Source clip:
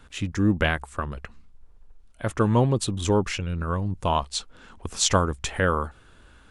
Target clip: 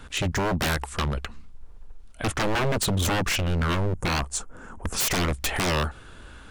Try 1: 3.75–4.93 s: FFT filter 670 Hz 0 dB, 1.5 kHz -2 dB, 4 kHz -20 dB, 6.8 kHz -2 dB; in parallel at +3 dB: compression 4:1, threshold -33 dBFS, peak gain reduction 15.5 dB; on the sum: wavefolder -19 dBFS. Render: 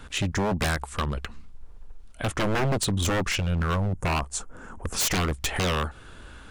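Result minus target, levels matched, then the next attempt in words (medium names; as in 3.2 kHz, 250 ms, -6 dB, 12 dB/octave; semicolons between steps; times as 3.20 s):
compression: peak gain reduction +8 dB
3.75–4.93 s: FFT filter 670 Hz 0 dB, 1.5 kHz -2 dB, 4 kHz -20 dB, 6.8 kHz -2 dB; in parallel at +3 dB: compression 4:1, threshold -22 dBFS, peak gain reduction 7 dB; on the sum: wavefolder -19 dBFS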